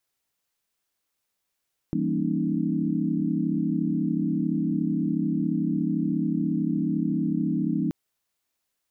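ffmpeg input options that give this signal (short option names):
-f lavfi -i "aevalsrc='0.0355*(sin(2*PI*164.81*t)+sin(2*PI*196*t)+sin(2*PI*233.08*t)+sin(2*PI*277.18*t)+sin(2*PI*311.13*t))':d=5.98:s=44100"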